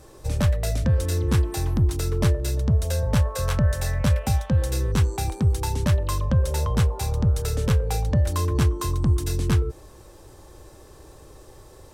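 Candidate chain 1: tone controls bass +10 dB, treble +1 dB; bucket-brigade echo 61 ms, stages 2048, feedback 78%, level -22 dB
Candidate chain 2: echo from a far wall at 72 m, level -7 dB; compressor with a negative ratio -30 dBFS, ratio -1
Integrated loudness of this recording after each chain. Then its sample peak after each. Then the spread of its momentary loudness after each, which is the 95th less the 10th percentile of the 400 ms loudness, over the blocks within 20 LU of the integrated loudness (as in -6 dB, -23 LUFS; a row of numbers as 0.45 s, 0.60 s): -14.5 LUFS, -31.5 LUFS; -1.0 dBFS, -13.5 dBFS; 2 LU, 11 LU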